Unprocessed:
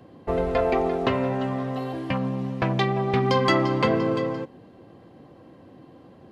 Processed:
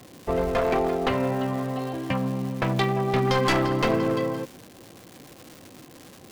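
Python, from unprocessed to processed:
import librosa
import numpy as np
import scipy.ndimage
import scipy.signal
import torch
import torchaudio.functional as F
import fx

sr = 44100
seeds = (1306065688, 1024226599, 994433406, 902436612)

y = np.minimum(x, 2.0 * 10.0 ** (-18.5 / 20.0) - x)
y = fx.dmg_crackle(y, sr, seeds[0], per_s=450.0, level_db=-35.0)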